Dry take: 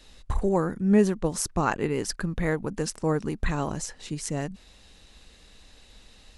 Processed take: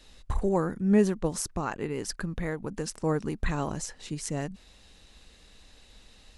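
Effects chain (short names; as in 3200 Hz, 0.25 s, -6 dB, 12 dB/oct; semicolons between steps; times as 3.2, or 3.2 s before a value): 1.36–2.91 compressor 2.5:1, threshold -27 dBFS, peak gain reduction 6 dB; gain -2 dB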